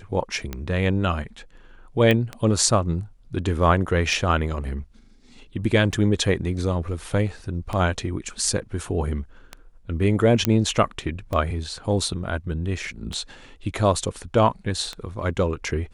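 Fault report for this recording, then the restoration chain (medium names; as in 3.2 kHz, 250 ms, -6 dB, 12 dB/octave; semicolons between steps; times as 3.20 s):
tick 33 1/3 rpm -15 dBFS
2.11 s: pop -9 dBFS
10.45 s: pop -5 dBFS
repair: de-click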